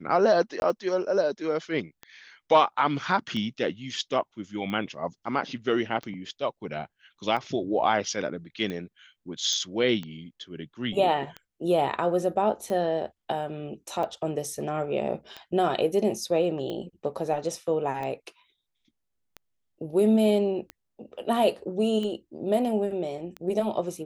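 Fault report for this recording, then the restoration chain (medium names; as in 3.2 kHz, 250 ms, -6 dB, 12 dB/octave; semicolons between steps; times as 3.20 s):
tick 45 rpm -22 dBFS
0.60–0.62 s: dropout 21 ms
9.53 s: pop -18 dBFS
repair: de-click; interpolate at 0.60 s, 21 ms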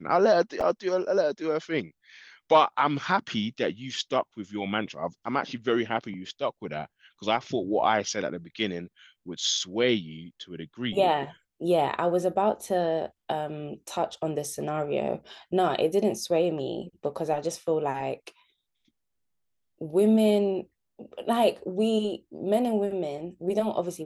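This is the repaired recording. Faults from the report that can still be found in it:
nothing left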